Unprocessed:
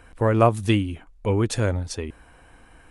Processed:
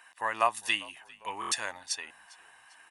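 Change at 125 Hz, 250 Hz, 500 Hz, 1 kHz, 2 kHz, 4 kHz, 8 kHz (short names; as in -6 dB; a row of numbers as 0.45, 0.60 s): -38.0, -25.5, -15.5, -3.5, +0.5, +0.5, +1.0 dB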